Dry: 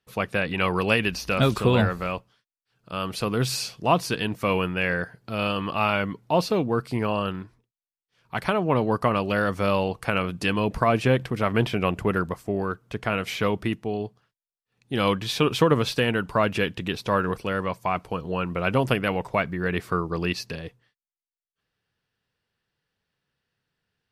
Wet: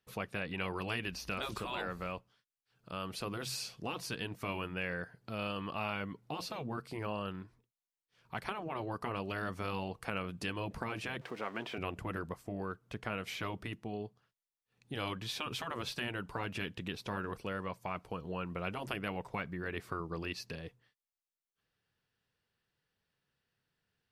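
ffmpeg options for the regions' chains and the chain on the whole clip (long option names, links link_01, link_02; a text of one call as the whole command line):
ffmpeg -i in.wav -filter_complex "[0:a]asettb=1/sr,asplit=3[link_01][link_02][link_03];[link_01]atrim=end=11.214[link_04];[link_02]atrim=start=11.21:end=11.78,asetpts=PTS-STARTPTS,afade=type=in:duration=0.004:curve=qsin,afade=type=out:start_time=0.566:duration=0.004:curve=qsin,aeval=exprs='val(0)+0.5*0.0158*sgn(val(0))':channel_layout=same,highpass=360,aemphasis=mode=reproduction:type=50kf[link_05];[link_03]atrim=start=11.776[link_06];[link_04][link_05]acrossfade=duration=0.004:curve1=hsin:curve2=qsin[link_07];[link_07][link_06]acrossfade=duration=0.004:curve1=qsin:curve2=hsin,afftfilt=real='re*lt(hypot(re,im),0.398)':imag='im*lt(hypot(re,im),0.398)':win_size=1024:overlap=0.75,acompressor=threshold=-45dB:ratio=1.5,volume=-4dB" out.wav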